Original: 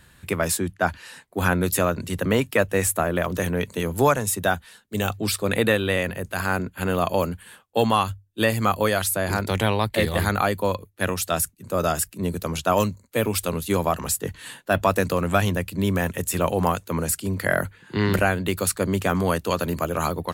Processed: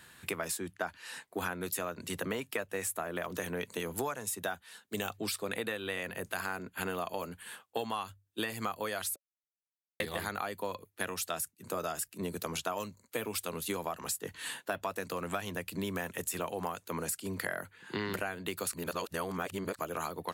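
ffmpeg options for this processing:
-filter_complex "[0:a]asplit=5[a][b][c][d][e];[a]atrim=end=9.16,asetpts=PTS-STARTPTS,afade=t=out:st=9.156:d=0.004:c=hsin[f];[b]atrim=start=9.16:end=10,asetpts=PTS-STARTPTS,volume=0[g];[c]atrim=start=10:end=18.732,asetpts=PTS-STARTPTS,afade=t=in:d=0.004:c=hsin[h];[d]atrim=start=18.728:end=19.792,asetpts=PTS-STARTPTS,areverse[i];[e]atrim=start=19.788[j];[f][g][h]concat=n=3:v=0:a=1[k];[k][i]acrossfade=d=0.004:c1=hsin:c2=hsin[l];[l][j]acrossfade=d=0.004:c1=hsin:c2=hsin,highpass=f=370:p=1,bandreject=f=560:w=12,acompressor=threshold=-33dB:ratio=6"

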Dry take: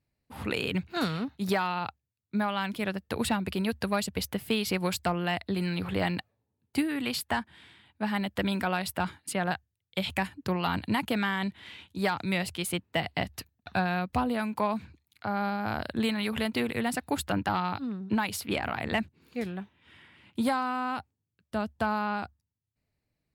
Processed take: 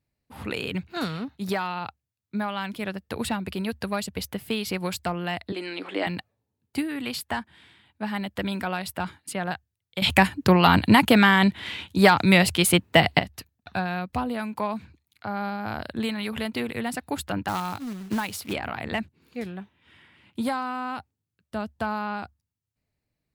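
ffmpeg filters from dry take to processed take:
-filter_complex "[0:a]asettb=1/sr,asplit=3[a][b][c];[a]atrim=end=5.524[d];[b]atrim=start=5.52:end=6.07,asetpts=PTS-STARTPTS,afade=t=in:d=0.004:c=qsin,afade=t=out:st=0.546:d=0.004:c=qsin,highpass=f=300:w=0.5412,highpass=f=300:w=1.3066,equalizer=f=300:t=q:w=4:g=10,equalizer=f=620:t=q:w=4:g=3,equalizer=f=2.1k:t=q:w=4:g=4,equalizer=f=3.1k:t=q:w=4:g=4,lowpass=f=9.1k:w=0.5412,lowpass=f=9.1k:w=1.3066[e];[c]atrim=start=6.066[f];[d][e]acrossfade=d=0.004:c1=hsin:c2=qsin[g];[g][f]acrossfade=d=0.004:c1=qsin:c2=hsin,asplit=3[h][i][j];[h]afade=t=out:st=17.47:d=0.02[k];[i]acrusher=bits=3:mode=log:mix=0:aa=0.000001,afade=t=in:st=17.47:d=0.02,afade=t=out:st=18.52:d=0.02[l];[j]afade=t=in:st=18.52:d=0.02[m];[k][l][m]amix=inputs=3:normalize=0,asplit=3[n][o][p];[n]atrim=end=10.022[q];[o]atrim=start=10.018:end=13.192,asetpts=PTS-STARTPTS,volume=12dB[r];[p]atrim=start=13.188[s];[q][r]acrossfade=d=0.004:c1=hsin:c2=hsin[t];[t][s]acrossfade=d=0.004:c1=hsin:c2=hsin"

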